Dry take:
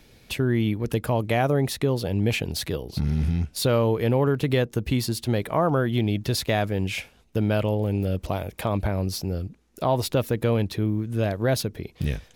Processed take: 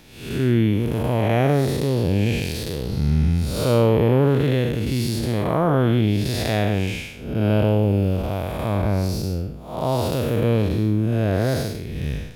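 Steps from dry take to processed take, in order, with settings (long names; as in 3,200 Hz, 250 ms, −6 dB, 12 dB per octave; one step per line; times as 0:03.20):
spectrum smeared in time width 260 ms
level +6.5 dB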